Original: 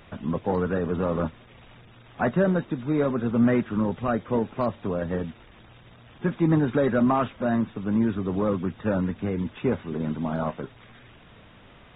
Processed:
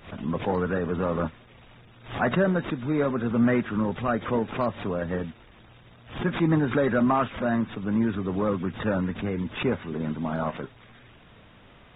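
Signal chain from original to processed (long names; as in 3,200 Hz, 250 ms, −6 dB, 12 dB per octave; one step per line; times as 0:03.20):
dynamic equaliser 1,800 Hz, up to +4 dB, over −42 dBFS, Q 0.81
background raised ahead of every attack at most 140 dB per second
level −1.5 dB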